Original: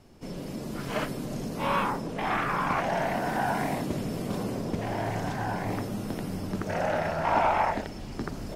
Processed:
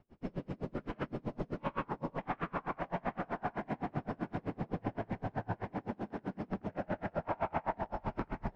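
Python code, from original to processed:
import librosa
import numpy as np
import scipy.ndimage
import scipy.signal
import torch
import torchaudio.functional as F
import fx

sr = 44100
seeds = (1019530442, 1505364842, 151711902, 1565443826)

p1 = fx.recorder_agc(x, sr, target_db=-21.0, rise_db_per_s=45.0, max_gain_db=30)
p2 = fx.highpass(p1, sr, hz=160.0, slope=24, at=(5.53, 6.5))
p3 = fx.schmitt(p2, sr, flips_db=-34.5)
p4 = p2 + F.gain(torch.from_numpy(p3), -11.5).numpy()
p5 = scipy.signal.sosfilt(scipy.signal.butter(2, 2200.0, 'lowpass', fs=sr, output='sos'), p4)
p6 = fx.echo_alternate(p5, sr, ms=376, hz=970.0, feedback_pct=68, wet_db=-2.5)
p7 = p6 * 10.0 ** (-33 * (0.5 - 0.5 * np.cos(2.0 * np.pi * 7.8 * np.arange(len(p6)) / sr)) / 20.0)
y = F.gain(torch.from_numpy(p7), -7.0).numpy()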